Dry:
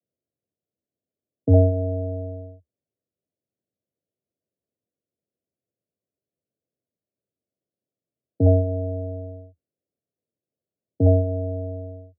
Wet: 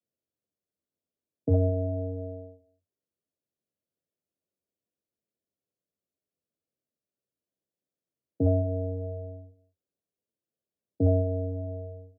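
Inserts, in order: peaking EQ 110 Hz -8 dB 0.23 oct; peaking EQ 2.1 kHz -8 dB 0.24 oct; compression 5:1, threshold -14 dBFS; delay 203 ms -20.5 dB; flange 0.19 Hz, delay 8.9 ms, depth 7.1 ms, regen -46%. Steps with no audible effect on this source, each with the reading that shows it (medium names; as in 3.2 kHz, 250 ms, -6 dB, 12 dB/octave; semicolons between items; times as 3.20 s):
peaking EQ 2.1 kHz: input has nothing above 680 Hz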